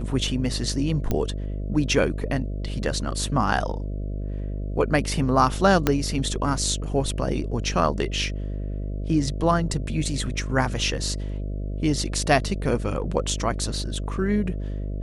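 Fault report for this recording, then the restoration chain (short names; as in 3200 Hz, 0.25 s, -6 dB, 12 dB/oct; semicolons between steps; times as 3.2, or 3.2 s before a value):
buzz 50 Hz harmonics 13 -29 dBFS
1.11 pop -11 dBFS
5.87 pop -5 dBFS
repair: de-click; de-hum 50 Hz, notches 13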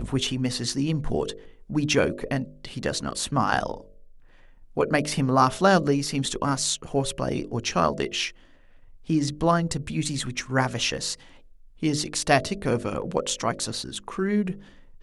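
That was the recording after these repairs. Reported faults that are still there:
5.87 pop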